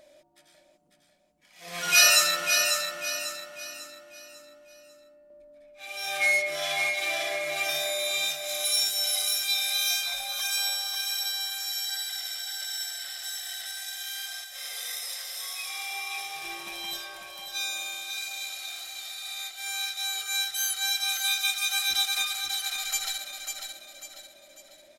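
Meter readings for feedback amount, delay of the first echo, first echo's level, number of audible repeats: 39%, 546 ms, -6.0 dB, 4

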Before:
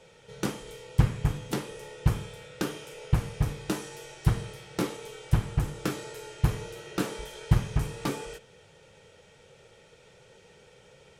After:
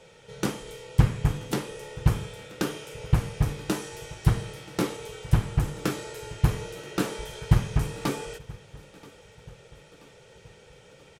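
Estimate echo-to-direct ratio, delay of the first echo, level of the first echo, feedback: -20.5 dB, 980 ms, -22.0 dB, 52%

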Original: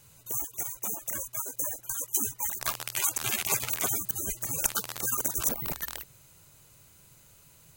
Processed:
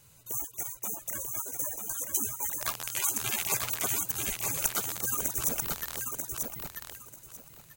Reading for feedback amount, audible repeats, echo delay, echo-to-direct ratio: 21%, 3, 940 ms, -4.5 dB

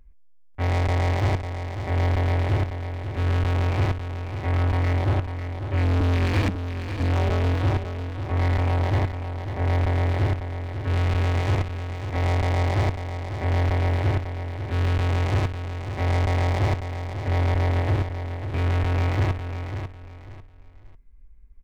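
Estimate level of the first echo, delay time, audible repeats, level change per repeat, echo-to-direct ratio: -8.5 dB, 546 ms, 3, -11.5 dB, -8.0 dB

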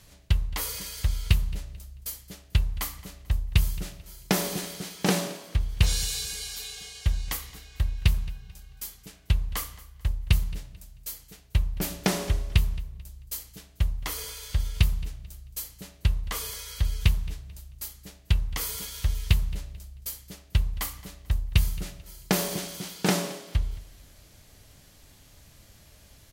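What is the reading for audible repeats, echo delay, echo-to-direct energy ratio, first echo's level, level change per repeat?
2, 220 ms, -19.0 dB, -19.5 dB, -10.0 dB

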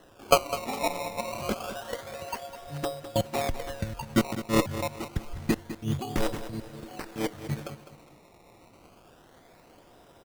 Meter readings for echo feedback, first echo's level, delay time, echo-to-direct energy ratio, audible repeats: 34%, -12.5 dB, 205 ms, -12.0 dB, 3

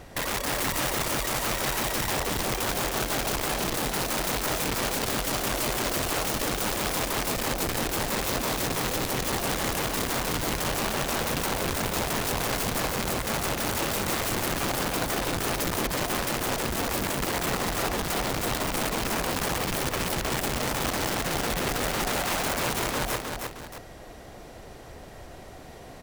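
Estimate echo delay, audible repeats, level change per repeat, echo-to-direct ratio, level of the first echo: 311 ms, 2, -8.0 dB, -4.0 dB, -4.5 dB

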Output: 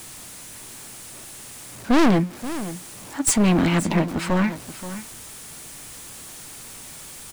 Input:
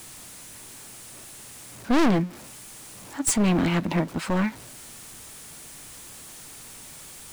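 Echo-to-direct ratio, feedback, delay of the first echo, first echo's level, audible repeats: -13.5 dB, no regular repeats, 528 ms, -13.5 dB, 1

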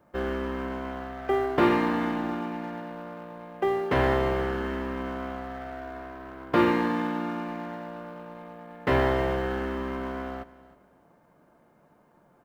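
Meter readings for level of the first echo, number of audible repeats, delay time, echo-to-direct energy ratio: -19.0 dB, 2, 313 ms, -18.5 dB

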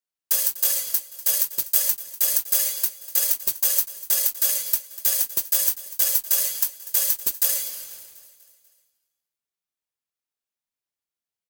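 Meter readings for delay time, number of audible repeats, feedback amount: 245 ms, 4, 52%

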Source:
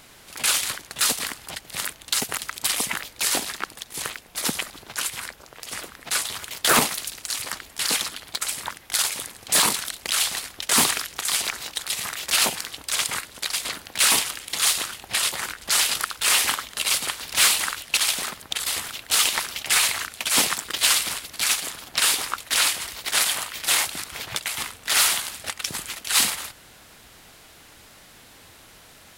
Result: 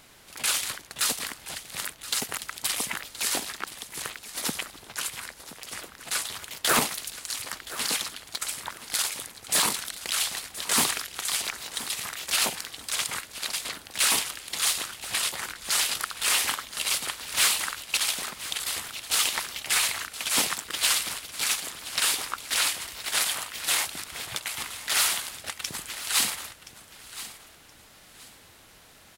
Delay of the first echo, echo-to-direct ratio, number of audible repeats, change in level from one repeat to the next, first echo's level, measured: 1023 ms, -14.5 dB, 2, -11.5 dB, -15.0 dB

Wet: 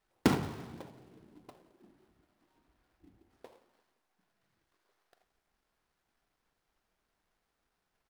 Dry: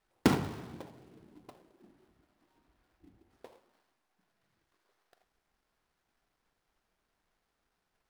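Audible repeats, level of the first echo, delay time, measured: 3, -22.5 dB, 173 ms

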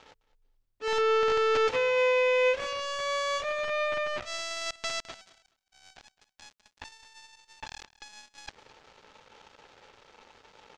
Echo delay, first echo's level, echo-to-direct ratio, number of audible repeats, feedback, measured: 211 ms, -19.5 dB, -19.5 dB, 2, 21%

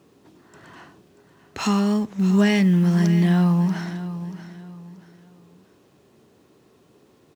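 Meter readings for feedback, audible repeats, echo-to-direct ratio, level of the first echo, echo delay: 32%, 3, -12.5 dB, -13.0 dB, 634 ms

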